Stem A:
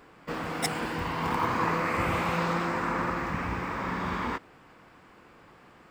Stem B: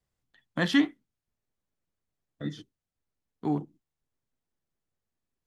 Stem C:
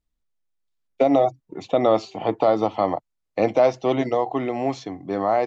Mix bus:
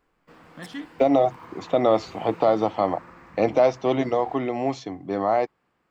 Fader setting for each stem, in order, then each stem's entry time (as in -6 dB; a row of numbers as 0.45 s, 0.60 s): -17.0 dB, -13.0 dB, -1.0 dB; 0.00 s, 0.00 s, 0.00 s